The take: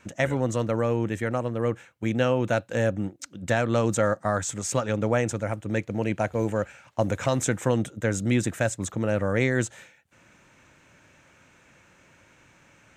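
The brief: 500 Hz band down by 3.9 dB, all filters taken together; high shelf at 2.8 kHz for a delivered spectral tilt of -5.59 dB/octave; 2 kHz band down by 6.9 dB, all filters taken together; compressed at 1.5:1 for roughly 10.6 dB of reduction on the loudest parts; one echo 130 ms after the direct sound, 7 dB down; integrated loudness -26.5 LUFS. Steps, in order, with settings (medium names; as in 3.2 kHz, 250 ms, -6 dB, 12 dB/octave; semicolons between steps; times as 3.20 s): peaking EQ 500 Hz -4 dB; peaking EQ 2 kHz -7.5 dB; treble shelf 2.8 kHz -3.5 dB; compression 1.5:1, threshold -51 dBFS; delay 130 ms -7 dB; trim +11.5 dB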